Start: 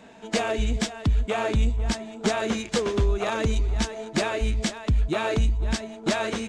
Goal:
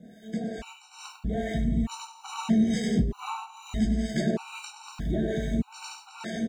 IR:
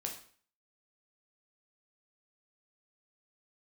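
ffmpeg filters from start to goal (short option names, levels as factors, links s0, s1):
-filter_complex "[0:a]aecho=1:1:100|170|219|253.3|277.3:0.631|0.398|0.251|0.158|0.1,alimiter=limit=0.0944:level=0:latency=1:release=28,acrusher=bits=8:mix=0:aa=0.5,asettb=1/sr,asplit=3[s0][s1][s2];[s0]atrim=end=1.424[s3];[s1]atrim=start=1.42:end=4.11,asetpts=PTS-STARTPTS,afade=t=in:d=0.004:c=qsin,afade=t=out:st=2.686:d=0.004:c=qsin,aecho=1:1:1:0.48,atrim=end_sample=118629[s4];[s2]atrim=start=4.106[s5];[s3][s4]acrossfade=d=0.004:c1=hsin:c2=qsin[s6];[s6][s5]acrossfade=d=0.004:c1=qsin:c2=hsin[s7];[1:a]atrim=start_sample=2205,asetrate=66150,aresample=44100[s8];[s7][s8]afir=irnorm=-1:irlink=0,acrossover=split=680[s9][s10];[s9]aeval=exprs='val(0)*(1-0.7/2+0.7/2*cos(2*PI*2.3*n/s))':c=same[s11];[s10]aeval=exprs='val(0)*(1-0.7/2-0.7/2*cos(2*PI*2.3*n/s))':c=same[s12];[s11][s12]amix=inputs=2:normalize=0,acompressor=threshold=0.0158:ratio=4,equalizer=f=180:w=1.1:g=12.5,dynaudnorm=f=290:g=7:m=2.51,afftfilt=real='re*gt(sin(2*PI*0.8*pts/sr)*(1-2*mod(floor(b*sr/1024/760),2)),0)':imag='im*gt(sin(2*PI*0.8*pts/sr)*(1-2*mod(floor(b*sr/1024/760),2)),0)':win_size=1024:overlap=0.75"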